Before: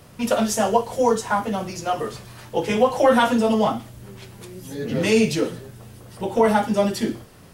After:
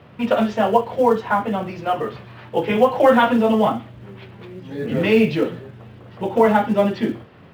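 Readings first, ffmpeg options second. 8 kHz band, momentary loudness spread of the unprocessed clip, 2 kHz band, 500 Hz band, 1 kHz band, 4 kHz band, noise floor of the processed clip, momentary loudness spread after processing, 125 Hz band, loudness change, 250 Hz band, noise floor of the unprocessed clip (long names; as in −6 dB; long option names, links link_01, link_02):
below −15 dB, 21 LU, +2.5 dB, +2.5 dB, +2.5 dB, −2.0 dB, −45 dBFS, 15 LU, +2.0 dB, +2.5 dB, +2.5 dB, −46 dBFS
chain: -filter_complex "[0:a]lowpass=frequency=3200:width=0.5412,lowpass=frequency=3200:width=1.3066,asplit=2[link_01][link_02];[link_02]acrusher=bits=5:mode=log:mix=0:aa=0.000001,volume=-9.5dB[link_03];[link_01][link_03]amix=inputs=2:normalize=0,highpass=85"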